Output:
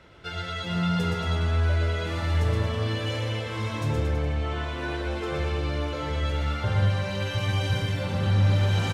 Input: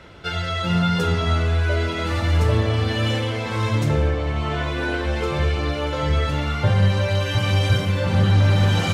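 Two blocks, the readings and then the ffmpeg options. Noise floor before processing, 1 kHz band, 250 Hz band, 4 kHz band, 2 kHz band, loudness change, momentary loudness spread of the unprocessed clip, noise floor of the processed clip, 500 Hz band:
-26 dBFS, -6.5 dB, -6.5 dB, -6.0 dB, -6.5 dB, -6.0 dB, 6 LU, -34 dBFS, -6.5 dB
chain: -af "aecho=1:1:120|228|325.2|412.7|491.4:0.631|0.398|0.251|0.158|0.1,volume=-8.5dB"

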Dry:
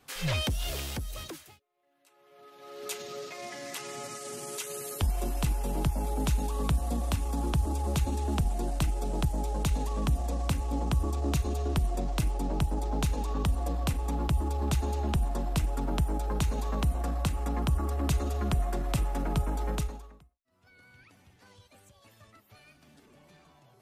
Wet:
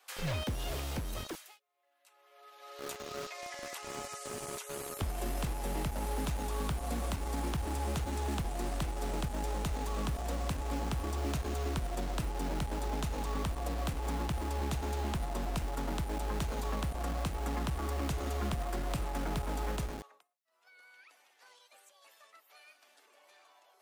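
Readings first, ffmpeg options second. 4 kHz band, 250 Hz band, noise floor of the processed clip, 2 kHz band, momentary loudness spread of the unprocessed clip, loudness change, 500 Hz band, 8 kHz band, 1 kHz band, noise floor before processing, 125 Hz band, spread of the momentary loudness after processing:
-4.5 dB, -5.0 dB, -67 dBFS, -1.5 dB, 8 LU, -5.5 dB, -2.5 dB, -4.0 dB, -2.0 dB, -62 dBFS, -7.0 dB, 6 LU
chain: -filter_complex "[0:a]acrossover=split=340|1300[a][b][c];[a]acompressor=threshold=-34dB:ratio=4[d];[b]acompressor=threshold=-40dB:ratio=4[e];[c]acompressor=threshold=-44dB:ratio=4[f];[d][e][f]amix=inputs=3:normalize=0,acrossover=split=500[g][h];[g]acrusher=bits=6:mix=0:aa=0.000001[i];[i][h]amix=inputs=2:normalize=0"

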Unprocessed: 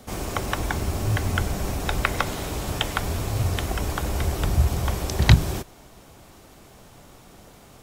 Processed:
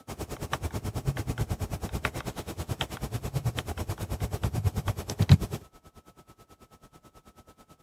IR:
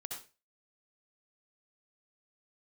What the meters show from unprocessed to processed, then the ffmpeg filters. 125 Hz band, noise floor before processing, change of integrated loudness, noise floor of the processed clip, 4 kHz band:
-4.5 dB, -50 dBFS, -6.0 dB, -69 dBFS, -8.5 dB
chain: -filter_complex "[0:a]afreqshift=29,asplit=2[a][b];[b]acrusher=samples=19:mix=1:aa=0.000001,volume=-9.5dB[c];[a][c]amix=inputs=2:normalize=0,aeval=exprs='val(0)+0.00282*sin(2*PI*1300*n/s)':c=same,aresample=32000,aresample=44100,aeval=exprs='val(0)*pow(10,-21*(0.5-0.5*cos(2*PI*9.2*n/s))/20)':c=same,volume=-4dB"

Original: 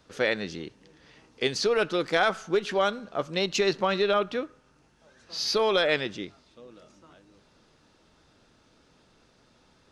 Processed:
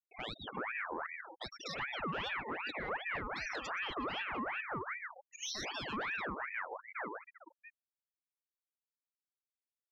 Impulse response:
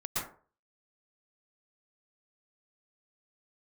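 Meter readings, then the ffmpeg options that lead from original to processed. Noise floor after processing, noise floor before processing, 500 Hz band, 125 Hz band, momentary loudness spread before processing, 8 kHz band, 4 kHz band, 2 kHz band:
under -85 dBFS, -63 dBFS, -19.5 dB, -10.5 dB, 14 LU, -10.0 dB, -13.0 dB, -7.0 dB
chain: -filter_complex "[0:a]asplit=2[a][b];[b]asplit=4[c][d][e][f];[c]adelay=144,afreqshift=-120,volume=-14.5dB[g];[d]adelay=288,afreqshift=-240,volume=-22.9dB[h];[e]adelay=432,afreqshift=-360,volume=-31.3dB[i];[f]adelay=576,afreqshift=-480,volume=-39.7dB[j];[g][h][i][j]amix=inputs=4:normalize=0[k];[a][k]amix=inputs=2:normalize=0,acompressor=threshold=-35dB:ratio=8,acrossover=split=700|3700[l][m][n];[n]adelay=100[o];[l]adelay=380[p];[p][m][o]amix=inputs=3:normalize=0,asoftclip=type=hard:threshold=-34dB,agate=range=-33dB:threshold=-55dB:ratio=3:detection=peak,highshelf=f=5.4k:g=-12,afftfilt=real='re*gte(hypot(re,im),0.0112)':imag='im*gte(hypot(re,im),0.0112)':win_size=1024:overlap=0.75,highpass=44,asoftclip=type=tanh:threshold=-35dB,lowshelf=f=93:g=-2.5,alimiter=level_in=19.5dB:limit=-24dB:level=0:latency=1:release=210,volume=-19.5dB,aeval=exprs='val(0)*sin(2*PI*1400*n/s+1400*0.55/2.6*sin(2*PI*2.6*n/s))':c=same,volume=13dB"

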